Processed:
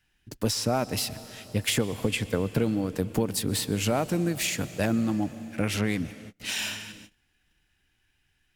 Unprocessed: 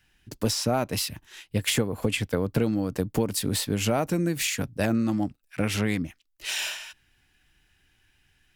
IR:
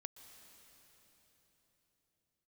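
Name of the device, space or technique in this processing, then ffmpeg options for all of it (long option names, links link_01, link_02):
keyed gated reverb: -filter_complex "[0:a]asplit=3[link_01][link_02][link_03];[1:a]atrim=start_sample=2205[link_04];[link_02][link_04]afir=irnorm=-1:irlink=0[link_05];[link_03]apad=whole_len=377416[link_06];[link_05][link_06]sidechaingate=range=-31dB:threshold=-59dB:ratio=16:detection=peak,volume=3.5dB[link_07];[link_01][link_07]amix=inputs=2:normalize=0,volume=-6dB"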